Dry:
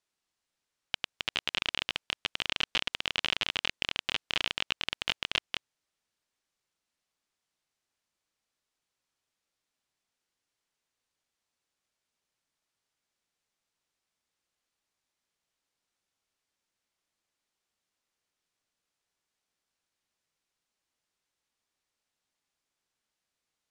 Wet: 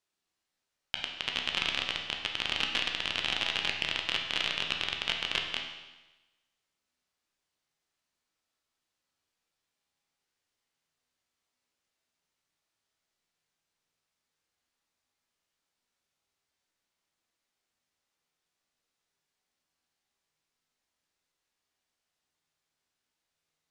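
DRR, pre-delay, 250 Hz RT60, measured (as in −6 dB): 1.5 dB, 12 ms, 1.1 s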